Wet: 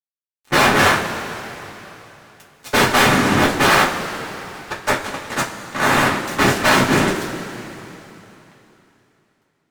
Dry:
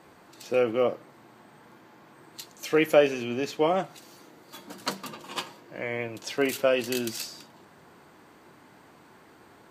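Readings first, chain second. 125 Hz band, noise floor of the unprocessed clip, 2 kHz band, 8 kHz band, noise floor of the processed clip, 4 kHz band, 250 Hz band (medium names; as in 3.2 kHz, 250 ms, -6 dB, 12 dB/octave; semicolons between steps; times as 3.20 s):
+17.5 dB, -55 dBFS, +17.5 dB, +14.5 dB, -69 dBFS, +14.5 dB, +11.5 dB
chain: high-pass 190 Hz; treble shelf 3.8 kHz -3.5 dB; small resonant body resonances 450/710 Hz, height 16 dB, ringing for 20 ms; noise-vocoded speech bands 3; fuzz box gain 24 dB, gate -32 dBFS; two-slope reverb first 0.21 s, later 3.3 s, from -18 dB, DRR -4 dB; trim -3 dB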